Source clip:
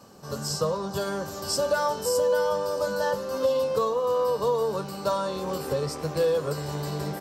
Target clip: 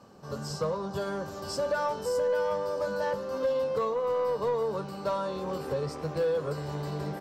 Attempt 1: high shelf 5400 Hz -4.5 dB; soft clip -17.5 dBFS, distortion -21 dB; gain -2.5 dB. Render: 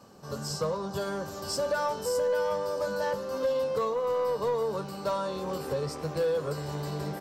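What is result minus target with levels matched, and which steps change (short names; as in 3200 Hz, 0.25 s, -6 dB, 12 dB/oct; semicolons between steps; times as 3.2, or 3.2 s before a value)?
8000 Hz band +5.0 dB
change: high shelf 5400 Hz -13 dB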